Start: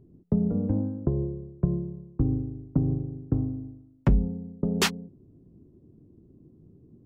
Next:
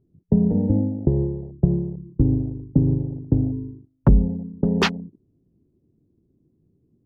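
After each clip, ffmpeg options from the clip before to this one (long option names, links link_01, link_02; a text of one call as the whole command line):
ffmpeg -i in.wav -af "afwtdn=0.0178,highshelf=frequency=3400:gain=-6.5,volume=6.5dB" out.wav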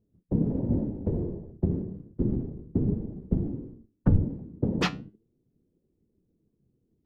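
ffmpeg -i in.wav -af "afftfilt=real='hypot(re,im)*cos(2*PI*random(0))':imag='hypot(re,im)*sin(2*PI*random(1))':win_size=512:overlap=0.75,flanger=delay=4.3:depth=8.5:regen=77:speed=0.33:shape=triangular,volume=3dB" out.wav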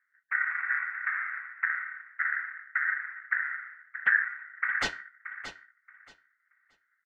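ffmpeg -i in.wav -af "aeval=exprs='val(0)*sin(2*PI*1700*n/s)':channel_layout=same,aecho=1:1:627|1254|1881:0.266|0.0532|0.0106,volume=-1dB" out.wav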